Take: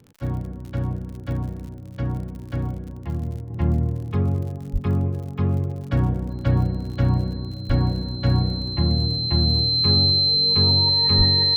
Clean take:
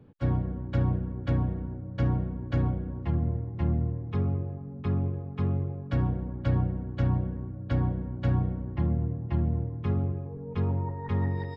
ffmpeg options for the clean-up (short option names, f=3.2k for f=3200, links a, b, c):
-filter_complex "[0:a]adeclick=t=4,bandreject=f=4.1k:w=30,asplit=3[a][b][c];[a]afade=t=out:st=4.72:d=0.02[d];[b]highpass=f=140:w=0.5412,highpass=f=140:w=1.3066,afade=t=in:st=4.72:d=0.02,afade=t=out:st=4.84:d=0.02[e];[c]afade=t=in:st=4.84:d=0.02[f];[d][e][f]amix=inputs=3:normalize=0,asplit=3[g][h][i];[g]afade=t=out:st=7.68:d=0.02[j];[h]highpass=f=140:w=0.5412,highpass=f=140:w=1.3066,afade=t=in:st=7.68:d=0.02,afade=t=out:st=7.8:d=0.02[k];[i]afade=t=in:st=7.8:d=0.02[l];[j][k][l]amix=inputs=3:normalize=0,asplit=3[m][n][o];[m]afade=t=out:st=11.17:d=0.02[p];[n]highpass=f=140:w=0.5412,highpass=f=140:w=1.3066,afade=t=in:st=11.17:d=0.02,afade=t=out:st=11.29:d=0.02[q];[o]afade=t=in:st=11.29:d=0.02[r];[p][q][r]amix=inputs=3:normalize=0,asetnsamples=n=441:p=0,asendcmd='3.5 volume volume -6dB',volume=0dB"